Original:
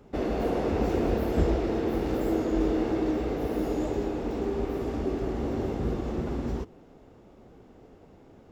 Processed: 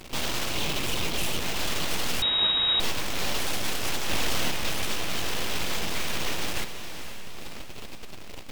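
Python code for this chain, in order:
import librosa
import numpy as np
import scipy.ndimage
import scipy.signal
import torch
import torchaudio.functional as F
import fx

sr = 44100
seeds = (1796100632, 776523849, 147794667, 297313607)

p1 = fx.spec_clip(x, sr, under_db=20)
p2 = fx.dereverb_blind(p1, sr, rt60_s=1.3)
p3 = fx.rider(p2, sr, range_db=10, speed_s=0.5)
p4 = p2 + (p3 * librosa.db_to_amplitude(2.5))
p5 = fx.fixed_phaser(p4, sr, hz=1400.0, stages=4, at=(0.54, 1.42))
p6 = fx.fuzz(p5, sr, gain_db=39.0, gate_db=-44.0)
p7 = fx.ladder_highpass(p6, sr, hz=1000.0, resonance_pct=35)
p8 = np.abs(p7)
p9 = p8 + fx.echo_diffused(p8, sr, ms=493, feedback_pct=54, wet_db=-9.5, dry=0)
p10 = np.repeat(p9[::2], 2)[:len(p9)]
p11 = fx.freq_invert(p10, sr, carrier_hz=3800, at=(2.22, 2.8))
p12 = fx.env_flatten(p11, sr, amount_pct=100, at=(4.08, 4.5), fade=0.02)
y = p12 * librosa.db_to_amplitude(-3.5)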